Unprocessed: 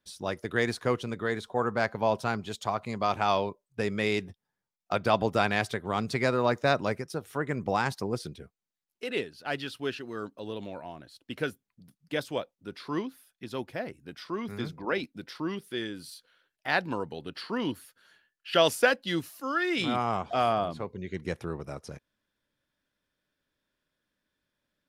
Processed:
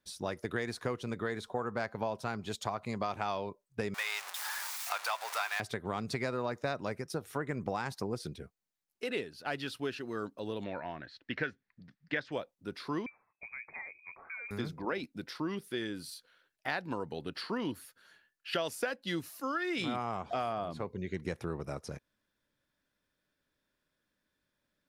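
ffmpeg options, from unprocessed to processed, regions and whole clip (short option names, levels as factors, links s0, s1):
-filter_complex "[0:a]asettb=1/sr,asplit=3[s0][s1][s2];[s0]atrim=end=3.944[s3];[s1]atrim=start=3.94:end=5.6,asetpts=PTS-STARTPTS,afade=t=in:d=0.004:c=qsin,afade=t=out:st=1.656:d=0.004:c=qsin,aeval=exprs='val(0)+0.5*0.0376*sgn(val(0))':c=same,highpass=f=870:w=0.5412,highpass=f=870:w=1.3066[s4];[s2]atrim=start=5.596[s5];[s3][s4]acrossfade=d=0.004:c1=hsin:c2=qsin[s6];[s6][s5]acrossfade=d=0.004:c1=qsin:c2=hsin,asettb=1/sr,asplit=3[s7][s8][s9];[s7]atrim=end=10.644[s10];[s8]atrim=start=10.64:end=12.32,asetpts=PTS-STARTPTS,afade=t=in:d=0.004:c=qsin,afade=t=out:st=1.676:d=0.004:c=qsin,lowpass=f=5100:w=0.5412,lowpass=f=5100:w=1.3066,equalizer=f=1800:w=2.1:g=13.5[s11];[s9]atrim=start=12.316[s12];[s10][s11]acrossfade=d=0.004:c1=hsin:c2=qsin[s13];[s13][s12]acrossfade=d=0.004:c1=qsin:c2=hsin,asettb=1/sr,asplit=3[s14][s15][s16];[s14]atrim=end=13.064[s17];[s15]atrim=start=13.06:end=14.51,asetpts=PTS-STARTPTS,afade=t=in:d=0.004:c=qsin,afade=t=out:st=1.446:d=0.004:c=qsin,acompressor=threshold=0.00631:ratio=2.5:attack=3.2:release=140:knee=1:detection=peak,lowpass=f=2200:t=q:w=0.5098,lowpass=f=2200:t=q:w=0.6013,lowpass=f=2200:t=q:w=0.9,lowpass=f=2200:t=q:w=2.563,afreqshift=-2600[s18];[s16]atrim=start=14.506[s19];[s17][s18]acrossfade=d=0.004:c1=hsin:c2=qsin[s20];[s20][s19]acrossfade=d=0.004:c1=qsin:c2=hsin,equalizer=f=3100:t=o:w=0.32:g=-3,acompressor=threshold=0.0282:ratio=6"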